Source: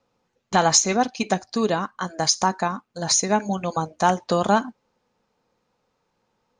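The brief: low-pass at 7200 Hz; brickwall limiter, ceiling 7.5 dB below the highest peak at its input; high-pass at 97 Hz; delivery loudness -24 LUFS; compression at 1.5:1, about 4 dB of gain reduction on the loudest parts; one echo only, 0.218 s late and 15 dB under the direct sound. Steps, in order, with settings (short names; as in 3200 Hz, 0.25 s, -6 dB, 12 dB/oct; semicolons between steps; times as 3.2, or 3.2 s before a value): HPF 97 Hz; LPF 7200 Hz; compressor 1.5:1, threshold -24 dBFS; limiter -15.5 dBFS; echo 0.218 s -15 dB; gain +4 dB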